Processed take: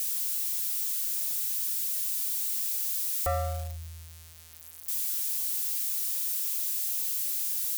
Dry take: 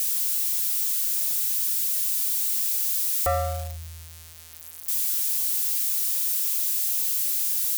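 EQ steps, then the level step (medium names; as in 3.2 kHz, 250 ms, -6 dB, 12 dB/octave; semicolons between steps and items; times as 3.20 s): bass shelf 84 Hz +6 dB; -5.5 dB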